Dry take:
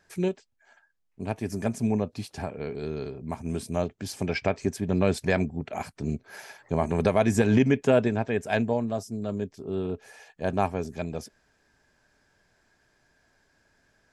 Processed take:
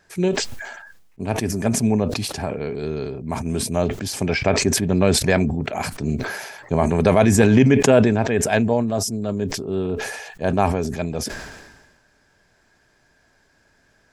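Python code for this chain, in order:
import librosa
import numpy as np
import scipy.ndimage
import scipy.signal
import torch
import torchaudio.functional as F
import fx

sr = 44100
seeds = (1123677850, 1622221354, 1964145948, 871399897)

y = fx.sustainer(x, sr, db_per_s=43.0)
y = y * librosa.db_to_amplitude(6.0)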